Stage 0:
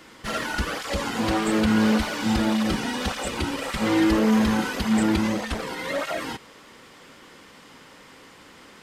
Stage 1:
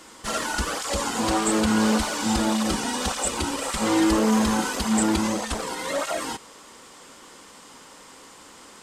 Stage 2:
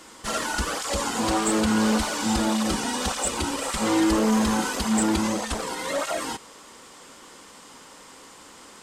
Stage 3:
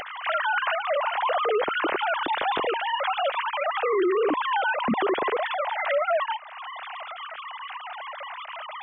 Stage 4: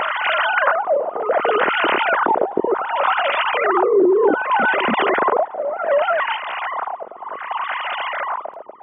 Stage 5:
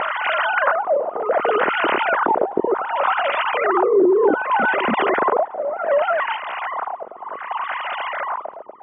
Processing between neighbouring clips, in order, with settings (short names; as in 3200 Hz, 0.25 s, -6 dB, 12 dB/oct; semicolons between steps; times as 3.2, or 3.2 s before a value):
graphic EQ 125/1000/2000/8000 Hz -6/+4/-4/+11 dB
soft clip -11 dBFS, distortion -25 dB
sine-wave speech; limiter -19.5 dBFS, peak gain reduction 10.5 dB; upward compressor, threshold -29 dBFS; gain +2.5 dB
per-bin compression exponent 0.6; LFO low-pass sine 0.66 Hz 390–2900 Hz; reverse echo 0.287 s -6.5 dB
air absorption 230 m